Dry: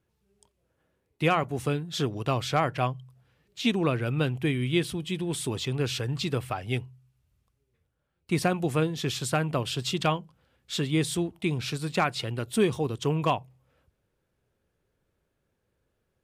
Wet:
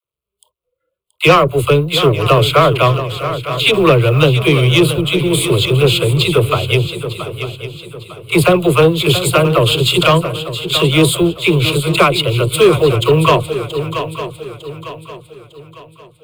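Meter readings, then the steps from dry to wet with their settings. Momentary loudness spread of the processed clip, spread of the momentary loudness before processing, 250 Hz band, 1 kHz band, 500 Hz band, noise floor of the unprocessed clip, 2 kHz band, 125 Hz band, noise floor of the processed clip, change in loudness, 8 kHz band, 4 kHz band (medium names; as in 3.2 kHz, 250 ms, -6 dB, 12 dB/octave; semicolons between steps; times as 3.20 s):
14 LU, 6 LU, +13.0 dB, +14.5 dB, +18.0 dB, -77 dBFS, +16.5 dB, +15.5 dB, -75 dBFS, +15.5 dB, +13.5 dB, +18.5 dB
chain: companding laws mixed up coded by A; spectral noise reduction 23 dB; peaking EQ 1.6 kHz -9 dB 0.29 oct; static phaser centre 1.2 kHz, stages 8; phase dispersion lows, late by 49 ms, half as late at 480 Hz; saturation -24 dBFS, distortion -15 dB; on a send: shuffle delay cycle 903 ms, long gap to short 3:1, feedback 37%, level -11 dB; on the sum: loudness maximiser +23 dB; trim -1 dB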